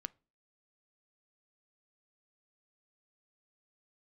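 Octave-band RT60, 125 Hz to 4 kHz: 0.40, 0.45, 0.40, 0.30, 0.30, 0.30 seconds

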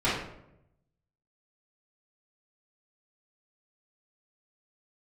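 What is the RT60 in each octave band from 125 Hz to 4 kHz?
1.2, 1.0, 0.90, 0.70, 0.60, 0.50 seconds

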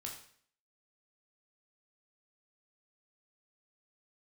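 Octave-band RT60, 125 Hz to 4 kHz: 0.60, 0.60, 0.55, 0.55, 0.55, 0.55 seconds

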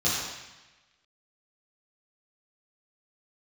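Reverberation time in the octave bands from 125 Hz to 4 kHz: 1.2, 1.1, 1.0, 1.1, 1.3, 1.1 seconds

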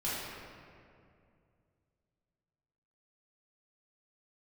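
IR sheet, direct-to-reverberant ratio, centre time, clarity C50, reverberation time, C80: −10.5 dB, 141 ms, −2.5 dB, 2.4 s, −0.5 dB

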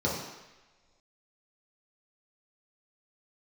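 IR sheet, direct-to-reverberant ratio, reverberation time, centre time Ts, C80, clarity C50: −6.5 dB, non-exponential decay, 56 ms, 5.0 dB, 2.0 dB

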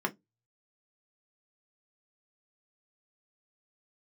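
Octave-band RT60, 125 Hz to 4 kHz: 0.30, 0.20, 0.20, 0.15, 0.10, 0.15 seconds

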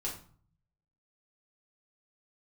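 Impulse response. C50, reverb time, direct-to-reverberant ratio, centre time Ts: 7.5 dB, 0.45 s, −5.0 dB, 26 ms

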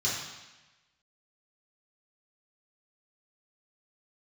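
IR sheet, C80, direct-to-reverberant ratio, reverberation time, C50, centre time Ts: 4.0 dB, −7.5 dB, 1.1 s, 1.5 dB, 65 ms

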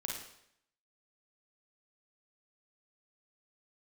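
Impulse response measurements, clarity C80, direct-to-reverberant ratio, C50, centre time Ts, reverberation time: 6.0 dB, −1.5 dB, 1.5 dB, 48 ms, 0.70 s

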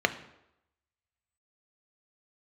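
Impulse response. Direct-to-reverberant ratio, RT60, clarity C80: 8.5 dB, 0.85 s, 17.0 dB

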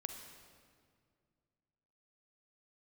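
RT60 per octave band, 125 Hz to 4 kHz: 2.8, 2.6, 2.3, 1.9, 1.7, 1.5 seconds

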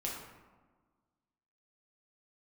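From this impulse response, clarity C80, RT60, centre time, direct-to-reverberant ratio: 4.5 dB, 1.4 s, 59 ms, −4.0 dB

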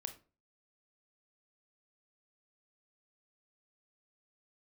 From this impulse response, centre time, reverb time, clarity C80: 8 ms, 0.35 s, 18.5 dB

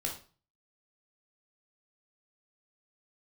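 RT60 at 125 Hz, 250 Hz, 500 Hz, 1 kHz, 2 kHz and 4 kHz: 0.55, 0.45, 0.40, 0.40, 0.35, 0.35 seconds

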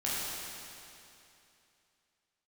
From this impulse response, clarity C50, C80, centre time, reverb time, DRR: −3.5 dB, −2.0 dB, 185 ms, 2.8 s, −8.5 dB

